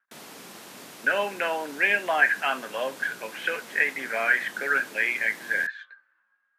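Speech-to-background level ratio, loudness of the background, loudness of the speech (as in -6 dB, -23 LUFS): 17.5 dB, -43.0 LUFS, -25.5 LUFS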